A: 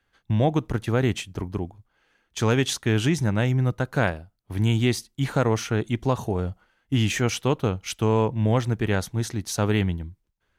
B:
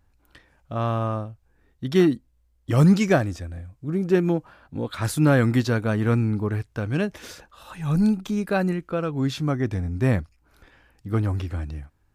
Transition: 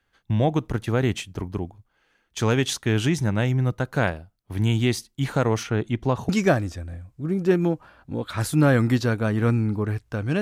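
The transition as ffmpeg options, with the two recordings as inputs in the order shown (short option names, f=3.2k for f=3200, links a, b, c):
-filter_complex "[0:a]asettb=1/sr,asplit=3[a][b][c];[a]atrim=end=5.634[d];[b]atrim=start=5.63:end=6.29,asetpts=PTS-STARTPTS,afade=t=in:d=0.004:c=qsin,afade=t=out:st=0.656:d=0.004:c=qsin,aemphasis=mode=reproduction:type=cd[e];[c]atrim=start=6.286[f];[d][e]acrossfade=d=0.004:c1=hsin:c2=qsin[g];[g][f]acrossfade=d=0.004:c1=qsin:c2=hsin,apad=whole_dur=10.41,atrim=end=10.41,atrim=end=6.292[h];[1:a]atrim=start=2.928:end=7.05[i];[h][i]acrossfade=d=0.004:c1=hsin:c2=hsin"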